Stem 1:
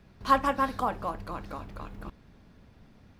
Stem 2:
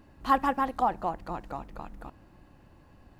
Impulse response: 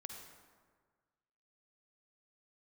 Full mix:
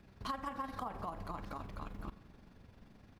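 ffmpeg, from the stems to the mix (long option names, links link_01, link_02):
-filter_complex "[0:a]tremolo=f=23:d=0.571,volume=-2.5dB,asplit=2[link_01][link_02];[link_02]volume=-9dB[link_03];[1:a]alimiter=limit=-22.5dB:level=0:latency=1,volume=-1,adelay=2.1,volume=-13.5dB,asplit=2[link_04][link_05];[link_05]apad=whole_len=140916[link_06];[link_01][link_06]sidechaincompress=threshold=-48dB:ratio=8:attack=8:release=113[link_07];[2:a]atrim=start_sample=2205[link_08];[link_03][link_08]afir=irnorm=-1:irlink=0[link_09];[link_07][link_04][link_09]amix=inputs=3:normalize=0,acompressor=threshold=-36dB:ratio=10"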